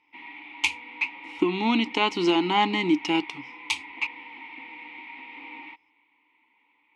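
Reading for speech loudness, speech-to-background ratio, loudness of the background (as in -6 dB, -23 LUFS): -25.5 LUFS, 15.5 dB, -41.0 LUFS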